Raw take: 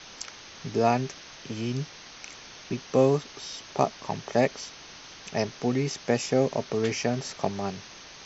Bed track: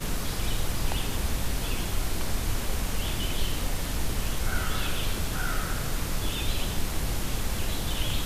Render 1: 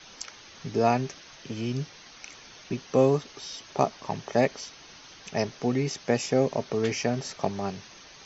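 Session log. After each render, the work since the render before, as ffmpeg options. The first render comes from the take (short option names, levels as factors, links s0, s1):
-af "afftdn=nr=6:nf=-47"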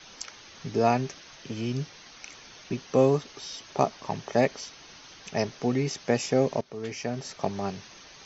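-filter_complex "[0:a]asplit=2[s0][s1];[s0]atrim=end=6.61,asetpts=PTS-STARTPTS,afade=t=out:st=6.606:d=0.004:c=hsin:silence=0.188365[s2];[s1]atrim=start=6.61,asetpts=PTS-STARTPTS,afade=t=in:d=0.98:silence=0.188365[s3];[s2][s3]concat=n=2:v=0:a=1"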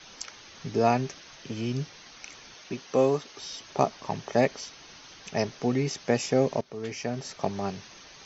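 -filter_complex "[0:a]asettb=1/sr,asplit=3[s0][s1][s2];[s0]atrim=end=2.544[s3];[s1]atrim=start=2.54:end=3.39,asetpts=PTS-STARTPTS,afade=t=in:d=0.004:c=qsin,afade=t=out:st=0.846:d=0.004:c=qsin,lowshelf=f=160:g=-11.5[s4];[s2]atrim=start=3.386[s5];[s3][s4]acrossfade=d=0.004:c1=hsin:c2=qsin[s6];[s6][s5]acrossfade=d=0.004:c1=qsin:c2=hsin"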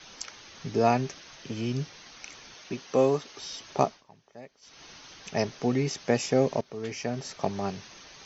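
-filter_complex "[0:a]asplit=3[s0][s1][s2];[s0]atrim=end=4.04,asetpts=PTS-STARTPTS,afade=t=out:st=3.82:d=0.22:silence=0.0668344[s3];[s1]atrim=start=4.04:end=4.61,asetpts=PTS-STARTPTS,volume=0.0668[s4];[s2]atrim=start=4.61,asetpts=PTS-STARTPTS,afade=t=in:d=0.22:silence=0.0668344[s5];[s3][s4][s5]concat=n=3:v=0:a=1"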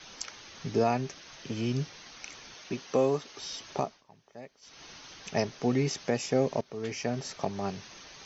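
-af "alimiter=limit=0.168:level=0:latency=1:release=496"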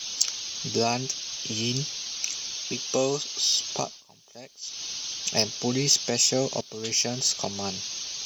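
-af "aexciter=amount=3.1:drive=9.7:freq=2800"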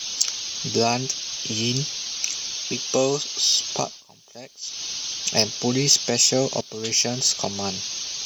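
-af "volume=1.58,alimiter=limit=0.891:level=0:latency=1"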